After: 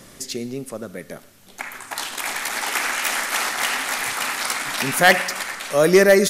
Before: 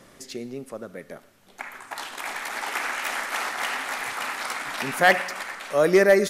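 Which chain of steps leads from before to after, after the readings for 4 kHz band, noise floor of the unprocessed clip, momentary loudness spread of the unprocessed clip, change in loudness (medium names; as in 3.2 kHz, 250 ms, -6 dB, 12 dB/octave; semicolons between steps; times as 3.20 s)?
+8.0 dB, -54 dBFS, 19 LU, +4.5 dB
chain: bass shelf 310 Hz +8 dB; in parallel at -10.5 dB: saturation -12.5 dBFS, distortion -12 dB; on the sum: treble shelf 2.8 kHz +11 dB; trim -1 dB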